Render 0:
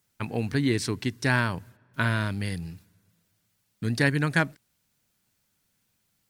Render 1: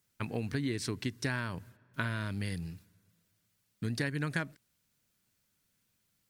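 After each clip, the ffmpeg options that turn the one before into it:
-af "equalizer=f=810:w=3.4:g=-4,acompressor=threshold=-26dB:ratio=6,volume=-3.5dB"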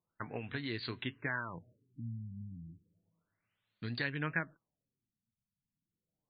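-af "flanger=delay=5.9:depth=2.9:regen=66:speed=0.67:shape=sinusoidal,lowshelf=f=480:g=-10.5,afftfilt=real='re*lt(b*sr/1024,240*pow(4800/240,0.5+0.5*sin(2*PI*0.32*pts/sr)))':imag='im*lt(b*sr/1024,240*pow(4800/240,0.5+0.5*sin(2*PI*0.32*pts/sr)))':win_size=1024:overlap=0.75,volume=5.5dB"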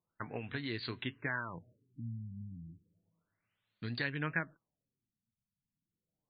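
-af anull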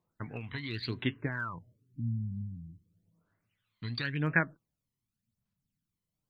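-af "aphaser=in_gain=1:out_gain=1:delay=1:decay=0.64:speed=0.91:type=sinusoidal"

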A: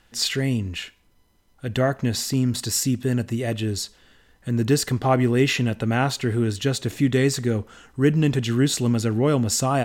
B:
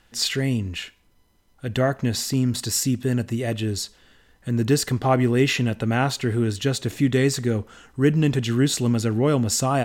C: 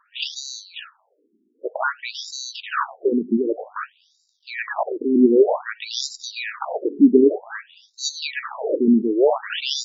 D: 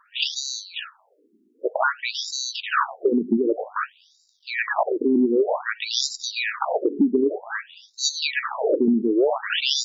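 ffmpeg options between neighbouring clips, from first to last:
-af anull
-af "acrusher=samples=21:mix=1:aa=0.000001,afftfilt=real='re*between(b*sr/1024,290*pow(5400/290,0.5+0.5*sin(2*PI*0.53*pts/sr))/1.41,290*pow(5400/290,0.5+0.5*sin(2*PI*0.53*pts/sr))*1.41)':imag='im*between(b*sr/1024,290*pow(5400/290,0.5+0.5*sin(2*PI*0.53*pts/sr))/1.41,290*pow(5400/290,0.5+0.5*sin(2*PI*0.53*pts/sr))*1.41)':win_size=1024:overlap=0.75,volume=9dB"
-af "acompressor=threshold=-19dB:ratio=12,volume=3.5dB"

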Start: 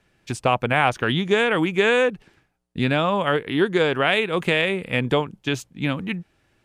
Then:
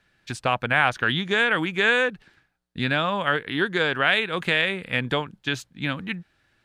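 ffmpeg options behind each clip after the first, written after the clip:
-af "equalizer=f=400:t=o:w=0.67:g=-3,equalizer=f=1.6k:t=o:w=0.67:g=8,equalizer=f=4k:t=o:w=0.67:g=7,volume=-4.5dB"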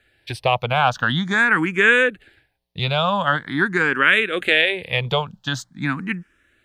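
-filter_complex "[0:a]asplit=2[a][b];[b]afreqshift=0.45[c];[a][c]amix=inputs=2:normalize=1,volume=6.5dB"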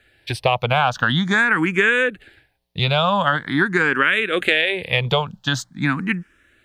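-af "acompressor=threshold=-17dB:ratio=6,volume=4dB"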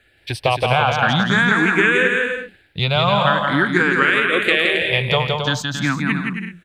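-af "aecho=1:1:170|272|333.2|369.9|392:0.631|0.398|0.251|0.158|0.1"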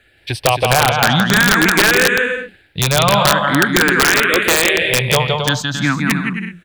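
-af "aeval=exprs='(mod(2.11*val(0)+1,2)-1)/2.11':c=same,volume=3.5dB"

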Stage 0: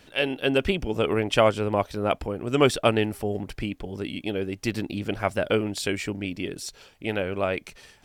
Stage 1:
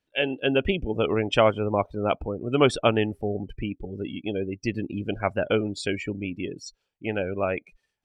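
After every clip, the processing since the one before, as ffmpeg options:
-af "afftdn=nr=28:nf=-33"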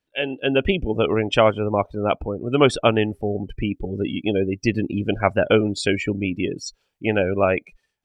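-af "dynaudnorm=f=220:g=5:m=8dB"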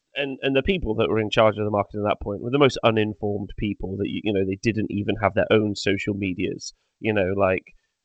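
-af "volume=-1.5dB" -ar 16000 -c:a g722

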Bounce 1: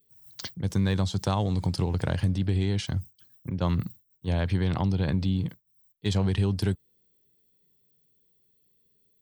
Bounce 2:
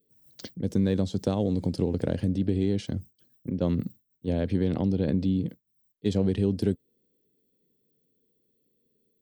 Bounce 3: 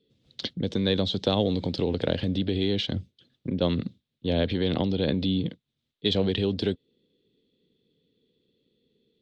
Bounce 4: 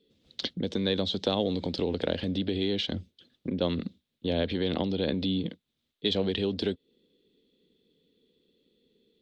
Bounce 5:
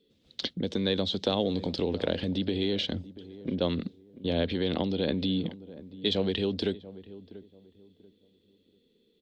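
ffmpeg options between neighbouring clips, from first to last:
-af "equalizer=f=250:t=o:w=1:g=12,equalizer=f=500:t=o:w=1:g=11,equalizer=f=1k:t=o:w=1:g=-7,volume=-6.5dB"
-filter_complex "[0:a]acrossover=split=420[a][b];[a]alimiter=level_in=1dB:limit=-24dB:level=0:latency=1:release=184,volume=-1dB[c];[c][b]amix=inputs=2:normalize=0,lowpass=f=3.6k:t=q:w=4.4,volume=5dB"
-filter_complex "[0:a]equalizer=f=120:t=o:w=0.54:g=-13,asplit=2[a][b];[b]acompressor=threshold=-33dB:ratio=6,volume=2.5dB[c];[a][c]amix=inputs=2:normalize=0,volume=-5dB"
-filter_complex "[0:a]asplit=2[a][b];[b]adelay=687,lowpass=f=830:p=1,volume=-16dB,asplit=2[c][d];[d]adelay=687,lowpass=f=830:p=1,volume=0.31,asplit=2[e][f];[f]adelay=687,lowpass=f=830:p=1,volume=0.31[g];[a][c][e][g]amix=inputs=4:normalize=0"

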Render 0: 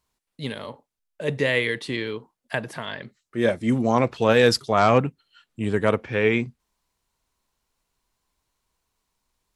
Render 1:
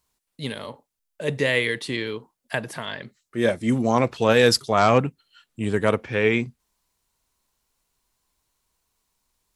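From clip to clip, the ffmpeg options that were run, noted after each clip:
-af "highshelf=f=5.7k:g=7"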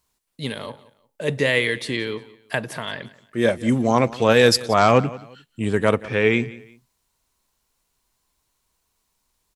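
-af "aecho=1:1:177|354:0.106|0.0318,volume=2dB"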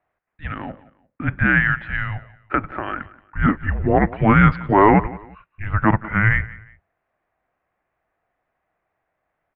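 -af "highpass=f=250:t=q:w=0.5412,highpass=f=250:t=q:w=1.307,lowpass=f=2.3k:t=q:w=0.5176,lowpass=f=2.3k:t=q:w=0.7071,lowpass=f=2.3k:t=q:w=1.932,afreqshift=-320,tiltshelf=f=650:g=-3,volume=4.5dB"

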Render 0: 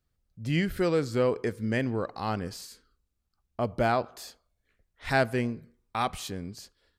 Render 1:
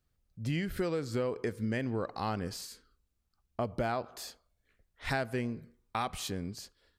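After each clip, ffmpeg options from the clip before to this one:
-af "acompressor=threshold=-29dB:ratio=6"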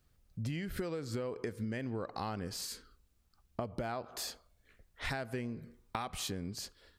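-af "acompressor=threshold=-43dB:ratio=5,volume=7dB"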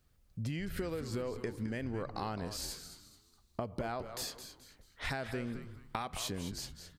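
-filter_complex "[0:a]asplit=5[a][b][c][d][e];[b]adelay=214,afreqshift=-130,volume=-10dB[f];[c]adelay=428,afreqshift=-260,volume=-19.1dB[g];[d]adelay=642,afreqshift=-390,volume=-28.2dB[h];[e]adelay=856,afreqshift=-520,volume=-37.4dB[i];[a][f][g][h][i]amix=inputs=5:normalize=0"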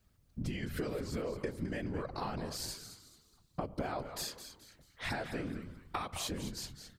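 -af "afftfilt=real='hypot(re,im)*cos(2*PI*random(0))':imag='hypot(re,im)*sin(2*PI*random(1))':win_size=512:overlap=0.75,volume=6dB"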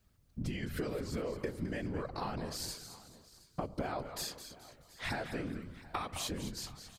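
-af "aecho=1:1:722:0.1"

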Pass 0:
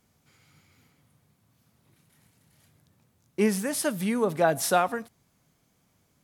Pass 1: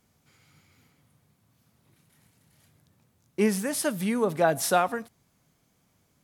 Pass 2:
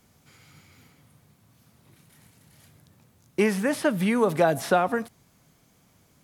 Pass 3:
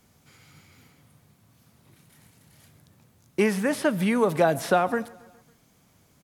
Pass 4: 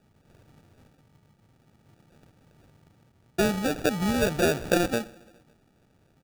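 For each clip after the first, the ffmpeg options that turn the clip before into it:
-af anull
-filter_complex "[0:a]acrossover=split=570|3300[a][b][c];[a]acompressor=threshold=-29dB:ratio=4[d];[b]acompressor=threshold=-30dB:ratio=4[e];[c]acompressor=threshold=-49dB:ratio=4[f];[d][e][f]amix=inputs=3:normalize=0,volume=7dB"
-af "aecho=1:1:138|276|414|552:0.0708|0.0404|0.023|0.0131"
-af "acrusher=samples=42:mix=1:aa=0.000001,volume=-2dB"

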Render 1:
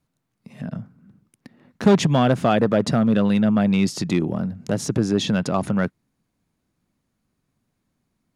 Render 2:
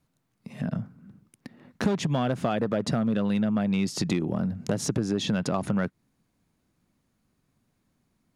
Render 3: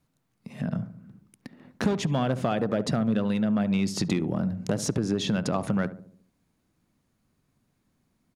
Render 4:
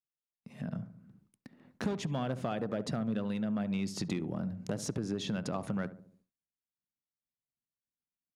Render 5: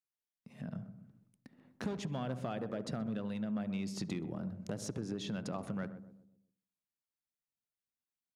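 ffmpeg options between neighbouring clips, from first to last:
-af "acompressor=threshold=-24dB:ratio=6,volume=1.5dB"
-filter_complex "[0:a]asplit=2[a][b];[b]adelay=71,lowpass=f=840:p=1,volume=-12dB,asplit=2[c][d];[d]adelay=71,lowpass=f=840:p=1,volume=0.54,asplit=2[e][f];[f]adelay=71,lowpass=f=840:p=1,volume=0.54,asplit=2[g][h];[h]adelay=71,lowpass=f=840:p=1,volume=0.54,asplit=2[i][j];[j]adelay=71,lowpass=f=840:p=1,volume=0.54,asplit=2[k][l];[l]adelay=71,lowpass=f=840:p=1,volume=0.54[m];[a][c][e][g][i][k][m]amix=inputs=7:normalize=0"
-af "agate=range=-33dB:threshold=-54dB:ratio=3:detection=peak,volume=-8.5dB"
-filter_complex "[0:a]asplit=2[a][b];[b]adelay=127,lowpass=f=800:p=1,volume=-11dB,asplit=2[c][d];[d]adelay=127,lowpass=f=800:p=1,volume=0.46,asplit=2[e][f];[f]adelay=127,lowpass=f=800:p=1,volume=0.46,asplit=2[g][h];[h]adelay=127,lowpass=f=800:p=1,volume=0.46,asplit=2[i][j];[j]adelay=127,lowpass=f=800:p=1,volume=0.46[k];[a][c][e][g][i][k]amix=inputs=6:normalize=0,volume=-4.5dB"

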